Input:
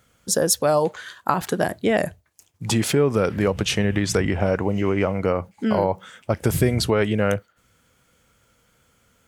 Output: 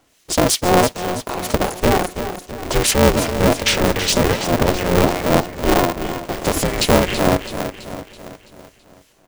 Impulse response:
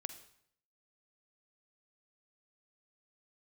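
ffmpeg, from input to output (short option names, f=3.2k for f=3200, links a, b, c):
-filter_complex "[0:a]highpass=290,equalizer=f=1.5k:t=o:w=0.87:g=-11.5,dynaudnorm=f=600:g=7:m=6.5dB,alimiter=limit=-14.5dB:level=0:latency=1:release=44,acontrast=23,asplit=2[a][b];[b]asetrate=29433,aresample=44100,atempo=1.49831,volume=-4dB[c];[a][c]amix=inputs=2:normalize=0,acrossover=split=1700[d][e];[d]aeval=exprs='val(0)*(1-0.7/2+0.7/2*cos(2*PI*2.6*n/s))':c=same[f];[e]aeval=exprs='val(0)*(1-0.7/2-0.7/2*cos(2*PI*2.6*n/s))':c=same[g];[f][g]amix=inputs=2:normalize=0,asetrate=40440,aresample=44100,atempo=1.09051,aecho=1:1:330|660|990|1320|1650|1980:0.316|0.161|0.0823|0.0419|0.0214|0.0109,aeval=exprs='val(0)*sgn(sin(2*PI*180*n/s))':c=same,volume=3.5dB"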